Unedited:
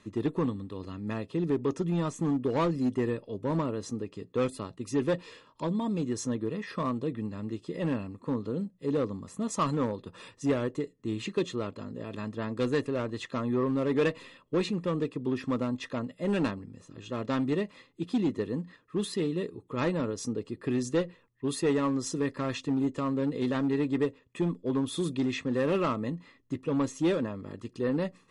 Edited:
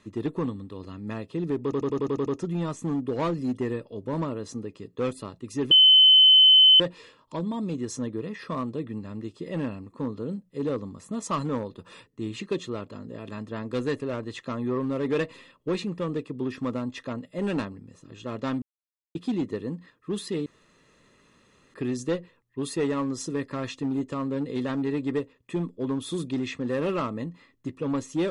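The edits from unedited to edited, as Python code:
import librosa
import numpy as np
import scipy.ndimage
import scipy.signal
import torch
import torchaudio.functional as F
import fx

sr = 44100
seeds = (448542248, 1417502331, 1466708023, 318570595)

y = fx.edit(x, sr, fx.stutter(start_s=1.63, slice_s=0.09, count=8),
    fx.insert_tone(at_s=5.08, length_s=1.09, hz=3050.0, db=-11.5),
    fx.cut(start_s=10.35, length_s=0.58),
    fx.silence(start_s=17.48, length_s=0.53),
    fx.room_tone_fill(start_s=19.32, length_s=1.28), tone=tone)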